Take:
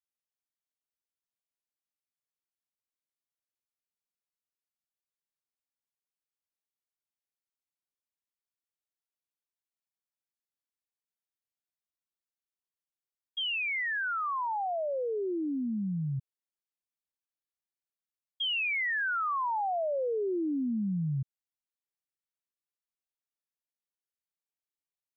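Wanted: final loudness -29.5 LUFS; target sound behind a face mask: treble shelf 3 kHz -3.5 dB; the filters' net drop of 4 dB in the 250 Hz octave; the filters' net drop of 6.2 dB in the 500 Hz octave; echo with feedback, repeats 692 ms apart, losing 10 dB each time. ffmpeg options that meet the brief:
-af "equalizer=f=250:t=o:g=-3.5,equalizer=f=500:t=o:g=-7,highshelf=f=3000:g=-3.5,aecho=1:1:692|1384|2076|2768:0.316|0.101|0.0324|0.0104,volume=1.58"

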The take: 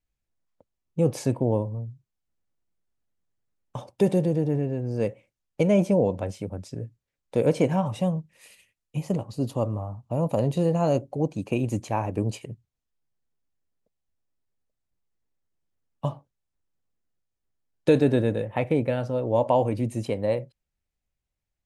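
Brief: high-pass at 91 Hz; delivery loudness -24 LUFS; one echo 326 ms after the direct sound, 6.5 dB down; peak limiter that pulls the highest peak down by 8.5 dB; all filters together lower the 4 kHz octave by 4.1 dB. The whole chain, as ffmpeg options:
-af "highpass=91,equalizer=f=4000:t=o:g=-5.5,alimiter=limit=0.158:level=0:latency=1,aecho=1:1:326:0.473,volume=1.58"

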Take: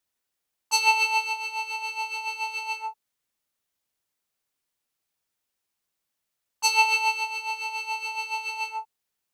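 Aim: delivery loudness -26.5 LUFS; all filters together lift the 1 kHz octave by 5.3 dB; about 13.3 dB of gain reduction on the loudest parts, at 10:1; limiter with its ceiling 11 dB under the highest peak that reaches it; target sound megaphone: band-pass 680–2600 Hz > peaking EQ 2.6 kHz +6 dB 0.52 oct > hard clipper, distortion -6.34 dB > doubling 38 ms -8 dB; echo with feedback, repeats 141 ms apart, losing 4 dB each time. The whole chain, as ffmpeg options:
-filter_complex "[0:a]equalizer=f=1000:t=o:g=7.5,acompressor=threshold=0.0562:ratio=10,alimiter=level_in=1.19:limit=0.0631:level=0:latency=1,volume=0.841,highpass=680,lowpass=2600,equalizer=f=2600:t=o:w=0.52:g=6,aecho=1:1:141|282|423|564|705|846|987|1128|1269:0.631|0.398|0.25|0.158|0.0994|0.0626|0.0394|0.0249|0.0157,asoftclip=type=hard:threshold=0.0168,asplit=2[s0][s1];[s1]adelay=38,volume=0.398[s2];[s0][s2]amix=inputs=2:normalize=0,volume=2.99"

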